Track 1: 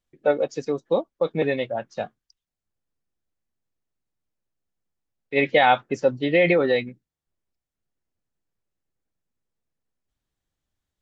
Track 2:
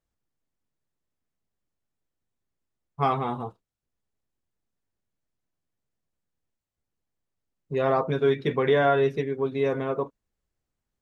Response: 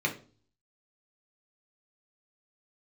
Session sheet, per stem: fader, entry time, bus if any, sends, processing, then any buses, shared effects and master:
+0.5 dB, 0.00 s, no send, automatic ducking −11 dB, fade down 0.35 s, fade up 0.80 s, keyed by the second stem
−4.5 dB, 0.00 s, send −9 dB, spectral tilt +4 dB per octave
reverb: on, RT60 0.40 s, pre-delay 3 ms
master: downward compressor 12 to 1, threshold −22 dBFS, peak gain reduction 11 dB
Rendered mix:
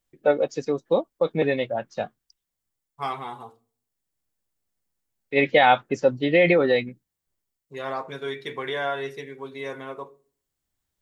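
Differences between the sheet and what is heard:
stem 2: send −9 dB → −16.5 dB
master: missing downward compressor 12 to 1, threshold −22 dBFS, peak gain reduction 11 dB

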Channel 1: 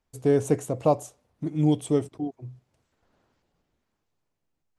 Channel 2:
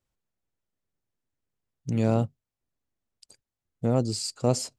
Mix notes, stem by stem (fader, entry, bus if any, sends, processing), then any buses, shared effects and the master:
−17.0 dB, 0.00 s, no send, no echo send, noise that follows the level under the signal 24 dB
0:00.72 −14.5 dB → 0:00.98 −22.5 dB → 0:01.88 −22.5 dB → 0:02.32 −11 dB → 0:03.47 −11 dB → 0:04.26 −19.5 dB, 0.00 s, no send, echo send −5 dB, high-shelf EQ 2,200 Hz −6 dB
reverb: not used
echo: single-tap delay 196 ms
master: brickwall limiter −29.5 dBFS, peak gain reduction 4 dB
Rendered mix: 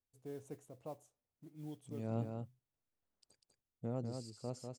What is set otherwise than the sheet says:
stem 1 −17.0 dB → −26.0 dB
master: missing brickwall limiter −29.5 dBFS, peak gain reduction 4 dB

